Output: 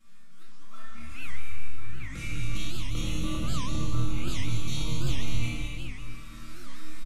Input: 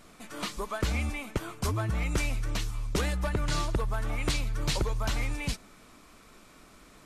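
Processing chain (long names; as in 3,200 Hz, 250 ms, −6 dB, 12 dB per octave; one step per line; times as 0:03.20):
flat-topped bell 550 Hz −10.5 dB
comb filter 6.1 ms, depth 48%
downward compressor 12 to 1, threshold −34 dBFS, peak gain reduction 12 dB
volume swells 779 ms
automatic gain control gain up to 13 dB
flanger swept by the level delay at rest 5.7 ms, full sweep at −23 dBFS
resonators tuned to a chord D#2 sus4, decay 0.61 s
bouncing-ball delay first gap 200 ms, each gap 0.8×, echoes 5
rectangular room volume 1,300 cubic metres, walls mixed, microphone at 2.2 metres
wow of a warped record 78 rpm, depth 250 cents
level +6.5 dB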